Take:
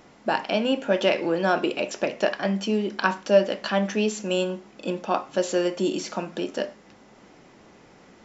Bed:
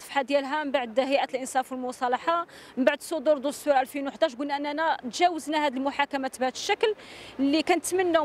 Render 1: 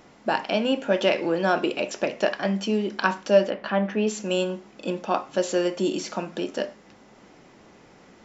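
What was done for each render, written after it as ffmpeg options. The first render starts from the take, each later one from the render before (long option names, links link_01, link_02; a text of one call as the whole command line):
ffmpeg -i in.wav -filter_complex "[0:a]asettb=1/sr,asplit=3[link_01][link_02][link_03];[link_01]atrim=end=3.504[link_04];[link_02]atrim=start=3.5:end=4.07,asetpts=PTS-STARTPTS,afade=type=in:duration=0.004:curve=qsin,afade=type=out:start_time=0.566:duration=0.004:curve=qsin,lowpass=2300[link_05];[link_03]atrim=start=4.066[link_06];[link_04][link_05]acrossfade=duration=0.004:curve1=hsin:curve2=qsin[link_07];[link_07][link_06]acrossfade=duration=0.004:curve1=qsin:curve2=hsin" out.wav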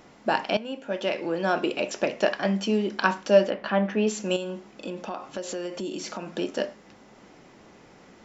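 ffmpeg -i in.wav -filter_complex "[0:a]asettb=1/sr,asplit=3[link_01][link_02][link_03];[link_01]atrim=end=4.364[link_04];[link_02]atrim=start=4.36:end=6.34,asetpts=PTS-STARTPTS,afade=type=in:duration=0.004:curve=qsin,afade=type=out:start_time=1.976:duration=0.004:curve=qsin,acompressor=threshold=-30dB:ratio=4:attack=3.2:release=140:knee=1:detection=peak[link_05];[link_03]atrim=start=6.336[link_06];[link_04][link_05]acrossfade=duration=0.004:curve1=hsin:curve2=qsin[link_07];[link_07][link_06]acrossfade=duration=0.004:curve1=qsin:curve2=hsin,asplit=2[link_08][link_09];[link_08]atrim=end=0.57,asetpts=PTS-STARTPTS,afade=type=out:start_time=0.566:duration=0.004:curve=hsin:silence=0.199526[link_10];[link_09]atrim=start=0.57,asetpts=PTS-STARTPTS,afade=type=in:duration=1.36:silence=0.199526[link_11];[link_10][link_11]concat=n=2:v=0:a=1" out.wav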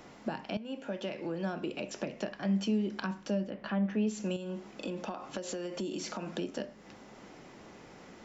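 ffmpeg -i in.wav -filter_complex "[0:a]acrossover=split=220[link_01][link_02];[link_02]acompressor=threshold=-36dB:ratio=10[link_03];[link_01][link_03]amix=inputs=2:normalize=0" out.wav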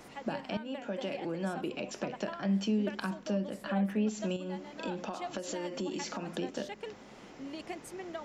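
ffmpeg -i in.wav -i bed.wav -filter_complex "[1:a]volume=-19dB[link_01];[0:a][link_01]amix=inputs=2:normalize=0" out.wav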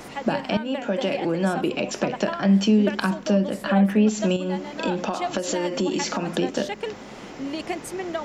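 ffmpeg -i in.wav -af "volume=12dB" out.wav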